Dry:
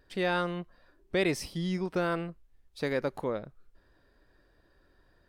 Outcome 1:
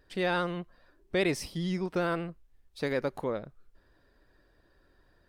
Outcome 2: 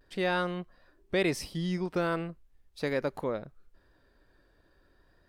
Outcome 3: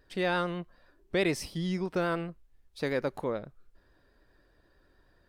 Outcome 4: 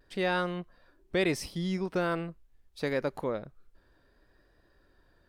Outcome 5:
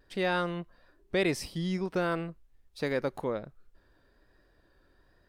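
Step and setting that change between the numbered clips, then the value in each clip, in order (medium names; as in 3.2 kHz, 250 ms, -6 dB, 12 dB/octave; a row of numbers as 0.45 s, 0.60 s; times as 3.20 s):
vibrato, rate: 15 Hz, 0.4 Hz, 9.3 Hz, 0.72 Hz, 1.2 Hz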